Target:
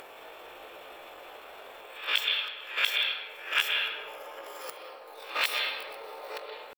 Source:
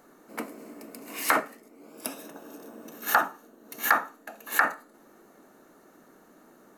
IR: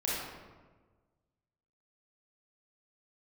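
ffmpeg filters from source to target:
-filter_complex "[0:a]areverse,bandreject=f=50:t=h:w=6,bandreject=f=100:t=h:w=6,bandreject=f=150:t=h:w=6,bandreject=f=200:t=h:w=6,bandreject=f=250:t=h:w=6,bandreject=f=300:t=h:w=6,bandreject=f=350:t=h:w=6,acompressor=mode=upward:threshold=-32dB:ratio=2.5,asetrate=85689,aresample=44100,atempo=0.514651,asplit=2[a][b];[b]highshelf=f=5k:t=q:w=3:g=-11.5[c];[1:a]atrim=start_sample=2205,adelay=125[d];[c][d]afir=irnorm=-1:irlink=0,volume=-10dB[e];[a][e]amix=inputs=2:normalize=0,volume=-4dB"

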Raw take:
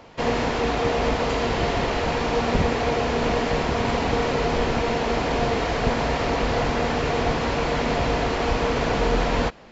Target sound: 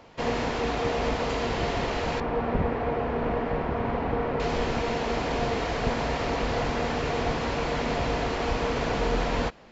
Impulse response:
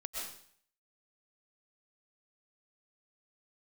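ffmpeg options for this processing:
-filter_complex "[0:a]asettb=1/sr,asplit=3[a][b][c];[a]atrim=end=2.204[d];[b]atrim=start=2.2:end=4.4,asetpts=PTS-STARTPTS,afade=t=in:d=0.004:c=qsin,afade=t=out:st=2.196:d=0.004:c=qsin,lowpass=1.7k[e];[c]atrim=start=4.396[f];[d][e]acrossfade=d=0.004:c1=hsin:c2=qsin[g];[g][f]acrossfade=d=0.004:c1=qsin:c2=hsin,volume=-4.5dB"

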